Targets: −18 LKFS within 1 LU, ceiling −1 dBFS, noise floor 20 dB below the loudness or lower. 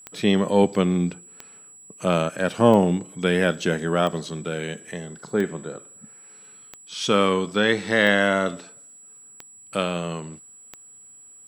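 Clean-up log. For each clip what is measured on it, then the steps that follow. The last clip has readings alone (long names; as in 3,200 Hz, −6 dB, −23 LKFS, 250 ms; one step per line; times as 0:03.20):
number of clicks 9; interfering tone 7,800 Hz; level of the tone −45 dBFS; integrated loudness −22.5 LKFS; sample peak −4.0 dBFS; target loudness −18.0 LKFS
→ click removal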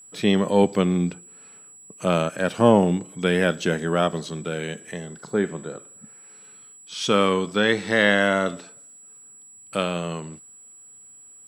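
number of clicks 0; interfering tone 7,800 Hz; level of the tone −45 dBFS
→ notch filter 7,800 Hz, Q 30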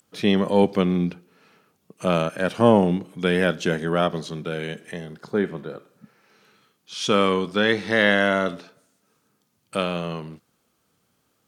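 interfering tone none found; integrated loudness −22.5 LKFS; sample peak −3.5 dBFS; target loudness −18.0 LKFS
→ level +4.5 dB
brickwall limiter −1 dBFS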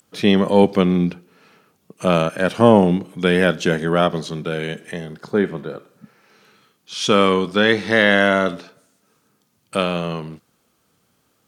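integrated loudness −18.0 LKFS; sample peak −1.0 dBFS; background noise floor −65 dBFS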